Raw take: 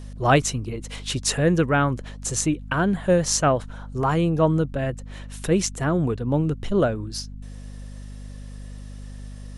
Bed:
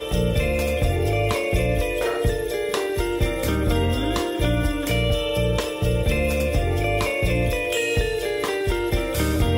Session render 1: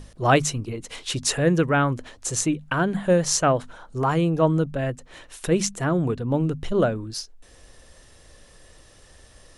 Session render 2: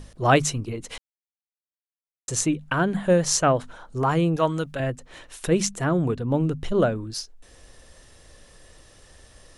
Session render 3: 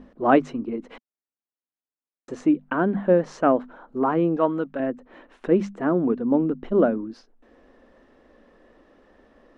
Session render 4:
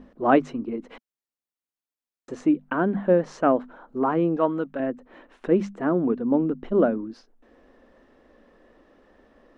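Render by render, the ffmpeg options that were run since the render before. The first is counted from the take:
-af "bandreject=f=50:t=h:w=6,bandreject=f=100:t=h:w=6,bandreject=f=150:t=h:w=6,bandreject=f=200:t=h:w=6,bandreject=f=250:t=h:w=6"
-filter_complex "[0:a]asettb=1/sr,asplit=3[a][b][c];[a]atrim=end=4.364[d];[b]atrim=start=4.36:end=4.8,asetpts=PTS-STARTPTS,afade=t=in:d=0.004:c=qsin,afade=t=out:st=0.436:d=0.004:c=qsin,tiltshelf=f=850:g=-7.5[e];[c]atrim=start=4.796[f];[d][e]acrossfade=d=0.004:c1=hsin:c2=qsin[g];[g][f]acrossfade=d=0.004:c1=qsin:c2=hsin,asplit=3[h][i][j];[h]atrim=end=0.98,asetpts=PTS-STARTPTS,afade=t=out:st=0.976:d=0.004:c=hsin[k];[i]atrim=start=0.98:end=2.28,asetpts=PTS-STARTPTS,volume=0[l];[j]atrim=start=2.28,asetpts=PTS-STARTPTS,afade=t=in:d=0.004:c=hsin[m];[k][l][m]concat=n=3:v=0:a=1"
-af "lowpass=1.5k,lowshelf=f=170:t=q:w=3:g=-11.5"
-af "volume=-1dB"

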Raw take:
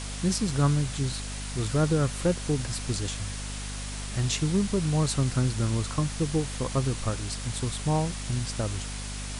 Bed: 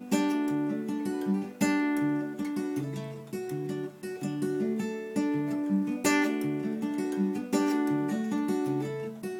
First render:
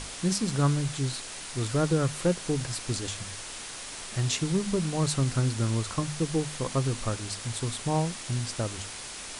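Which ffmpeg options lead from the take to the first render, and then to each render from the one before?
-af "bandreject=f=50:t=h:w=6,bandreject=f=100:t=h:w=6,bandreject=f=150:t=h:w=6,bandreject=f=200:t=h:w=6,bandreject=f=250:t=h:w=6"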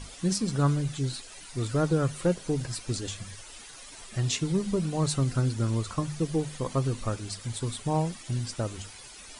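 -af "afftdn=nr=12:nf=-40"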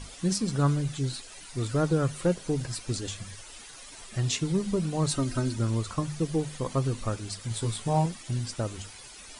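-filter_complex "[0:a]asettb=1/sr,asplit=3[a][b][c];[a]atrim=end=5.114[d];[b]atrim=start=5.11:end=5.58,asetpts=PTS-STARTPTS,afade=t=in:d=0.004:c=qsin,afade=t=out:st=0.466:d=0.004:c=qsin,aecho=1:1:3.2:0.65,atrim=end_sample=20727[e];[c]atrim=start=5.576[f];[d][e]acrossfade=d=0.004:c1=hsin:c2=qsin[g];[g][f]acrossfade=d=0.004:c1=qsin:c2=hsin,asettb=1/sr,asplit=3[h][i][j];[h]atrim=end=7.494[k];[i]atrim=start=7.49:end=8.06,asetpts=PTS-STARTPTS,afade=t=in:d=0.004:c=qsin,afade=t=out:st=0.566:d=0.004:c=qsin,asplit=2[l][m];[m]adelay=18,volume=-3.5dB[n];[l][n]amix=inputs=2:normalize=0,atrim=end_sample=25137[o];[j]atrim=start=8.056[p];[k][o]acrossfade=d=0.004:c1=hsin:c2=qsin[q];[q][p]acrossfade=d=0.004:c1=qsin:c2=hsin"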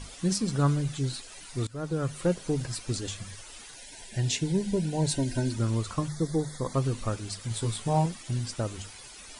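-filter_complex "[0:a]asettb=1/sr,asplit=3[a][b][c];[a]atrim=end=3.744[d];[b]atrim=start=3.74:end=5.51,asetpts=PTS-STARTPTS,afade=t=in:d=0.004:c=qsin,afade=t=out:st=1.766:d=0.004:c=qsin,asuperstop=centerf=1200:order=12:qfactor=3[e];[c]atrim=start=5.506[f];[d][e]acrossfade=d=0.004:c1=hsin:c2=qsin[g];[g][f]acrossfade=d=0.004:c1=qsin:c2=hsin,asettb=1/sr,asplit=3[h][i][j];[h]atrim=end=6.084[k];[i]atrim=start=6.08:end=6.74,asetpts=PTS-STARTPTS,afade=t=in:d=0.004:c=qsin,afade=t=out:st=0.656:d=0.004:c=qsin,asuperstop=centerf=2700:order=12:qfactor=2.3[l];[j]atrim=start=6.736[m];[k][l]acrossfade=d=0.004:c1=hsin:c2=qsin[n];[n][m]acrossfade=d=0.004:c1=qsin:c2=hsin,asplit=2[o][p];[o]atrim=end=1.67,asetpts=PTS-STARTPTS,afade=t=out:st=1.666:d=0.004:c=hsin:silence=0.105925[q];[p]atrim=start=1.67,asetpts=PTS-STARTPTS,afade=t=in:d=0.83:c=qsin:silence=0.105925[r];[q][r]concat=n=2:v=0:a=1"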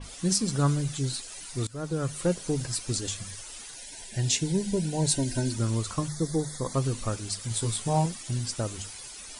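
-af "adynamicequalizer=threshold=0.00282:dfrequency=4400:dqfactor=0.7:tfrequency=4400:tqfactor=0.7:attack=5:release=100:ratio=0.375:range=3.5:mode=boostabove:tftype=highshelf"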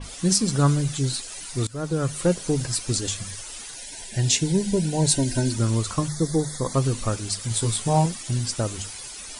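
-af "volume=5dB"

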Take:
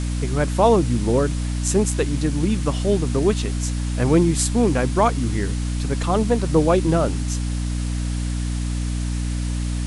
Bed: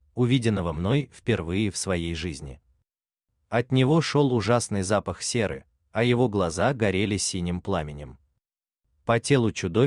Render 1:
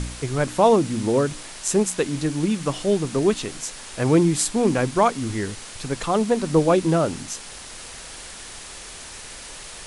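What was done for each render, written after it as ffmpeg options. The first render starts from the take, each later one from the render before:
-af "bandreject=f=60:t=h:w=4,bandreject=f=120:t=h:w=4,bandreject=f=180:t=h:w=4,bandreject=f=240:t=h:w=4,bandreject=f=300:t=h:w=4"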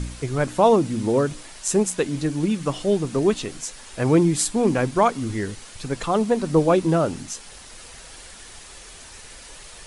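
-af "afftdn=nr=6:nf=-39"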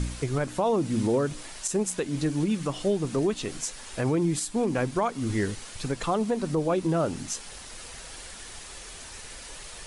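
-af "alimiter=limit=-16.5dB:level=0:latency=1:release=251"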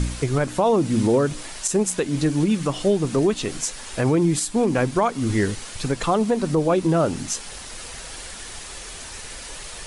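-af "volume=6dB"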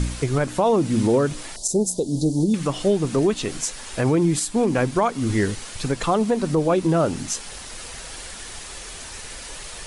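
-filter_complex "[0:a]asettb=1/sr,asplit=3[a][b][c];[a]atrim=end=1.564[d];[b]atrim=start=1.56:end=2.54,asetpts=PTS-STARTPTS,afade=t=in:d=0.004:c=qsin,afade=t=out:st=0.976:d=0.004:c=qsin,asuperstop=centerf=1800:order=8:qfactor=0.55[e];[c]atrim=start=2.536[f];[d][e]acrossfade=d=0.004:c1=hsin:c2=qsin[g];[g][f]acrossfade=d=0.004:c1=qsin:c2=hsin"

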